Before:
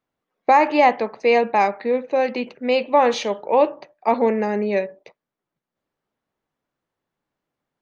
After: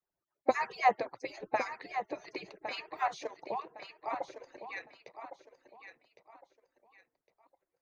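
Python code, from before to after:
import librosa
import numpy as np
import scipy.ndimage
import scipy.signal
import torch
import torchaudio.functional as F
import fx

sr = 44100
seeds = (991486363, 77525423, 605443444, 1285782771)

p1 = fx.hpss_only(x, sr, part='percussive')
p2 = fx.peak_eq(p1, sr, hz=3000.0, db=-6.5, octaves=0.65)
p3 = fx.level_steps(p2, sr, step_db=14, at=(3.08, 4.69))
p4 = p3 + fx.echo_feedback(p3, sr, ms=1109, feedback_pct=29, wet_db=-10.0, dry=0)
p5 = fx.dynamic_eq(p4, sr, hz=120.0, q=1.1, threshold_db=-53.0, ratio=4.0, max_db=7)
y = p5 * 10.0 ** (-6.5 / 20.0)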